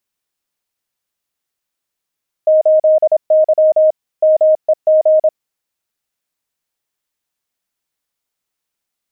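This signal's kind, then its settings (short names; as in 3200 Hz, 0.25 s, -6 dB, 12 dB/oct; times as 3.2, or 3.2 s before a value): Morse "8Y MEG" 26 wpm 624 Hz -6.5 dBFS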